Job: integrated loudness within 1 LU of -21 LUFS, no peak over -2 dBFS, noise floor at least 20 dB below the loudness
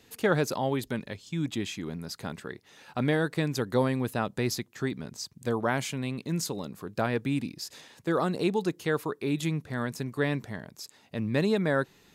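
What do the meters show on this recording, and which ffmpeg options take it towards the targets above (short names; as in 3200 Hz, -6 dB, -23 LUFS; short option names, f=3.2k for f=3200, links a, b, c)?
loudness -30.5 LUFS; peak -12.5 dBFS; loudness target -21.0 LUFS
-> -af "volume=9.5dB"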